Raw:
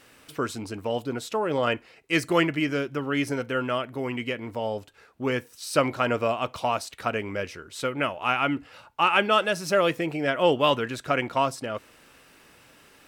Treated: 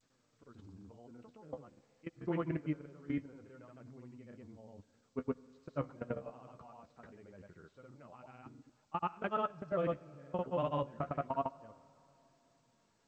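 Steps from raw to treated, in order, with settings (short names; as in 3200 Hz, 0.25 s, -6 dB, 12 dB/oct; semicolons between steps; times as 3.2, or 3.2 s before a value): LPF 1300 Hz 12 dB/oct; bell 170 Hz +9.5 dB 1.1 oct; level quantiser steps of 22 dB; flange 0.24 Hz, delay 7.5 ms, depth 8.1 ms, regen +44%; grains, pitch spread up and down by 0 st; on a send at -21 dB: reverb RT60 3.2 s, pre-delay 55 ms; on the sum: gain -5.5 dB; G.722 64 kbps 16000 Hz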